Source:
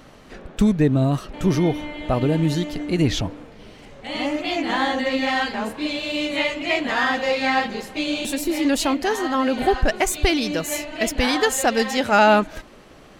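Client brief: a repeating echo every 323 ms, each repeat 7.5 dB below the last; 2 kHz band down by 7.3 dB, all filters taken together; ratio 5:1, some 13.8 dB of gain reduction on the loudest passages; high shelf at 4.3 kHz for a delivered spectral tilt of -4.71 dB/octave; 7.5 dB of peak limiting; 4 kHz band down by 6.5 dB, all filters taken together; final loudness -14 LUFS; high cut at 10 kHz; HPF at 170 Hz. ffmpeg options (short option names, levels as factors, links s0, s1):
-af "highpass=170,lowpass=10000,equalizer=f=2000:t=o:g=-8,equalizer=f=4000:t=o:g=-3.5,highshelf=f=4300:g=-3.5,acompressor=threshold=0.0355:ratio=5,alimiter=limit=0.0631:level=0:latency=1,aecho=1:1:323|646|969|1292|1615:0.422|0.177|0.0744|0.0312|0.0131,volume=8.91"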